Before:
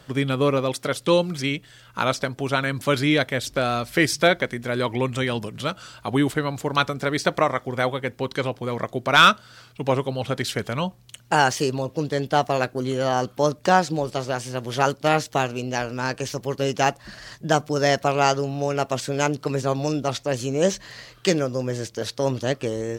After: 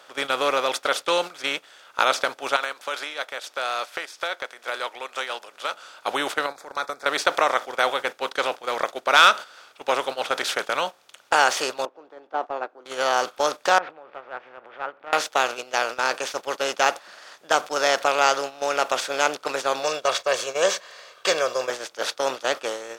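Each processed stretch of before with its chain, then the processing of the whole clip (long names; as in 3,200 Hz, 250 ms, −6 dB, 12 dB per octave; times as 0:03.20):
0:02.56–0:05.74: high-pass filter 520 Hz + downward compressor 16 to 1, threshold −28 dBFS
0:06.46–0:07.06: Butterworth band-reject 2,900 Hz, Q 1.7 + downward compressor 5 to 1, threshold −28 dBFS
0:11.85–0:12.86: Chebyshev band-pass filter 310–810 Hz + parametric band 600 Hz −9.5 dB 1.2 octaves
0:13.78–0:15.13: Butterworth low-pass 2,200 Hz + downward compressor 10 to 1, threshold −30 dBFS
0:19.83–0:21.70: parametric band 11,000 Hz −11 dB 0.2 octaves + comb filter 1.8 ms, depth 84%
whole clip: compressor on every frequency bin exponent 0.6; high-pass filter 620 Hz 12 dB per octave; noise gate −25 dBFS, range −13 dB; level −2 dB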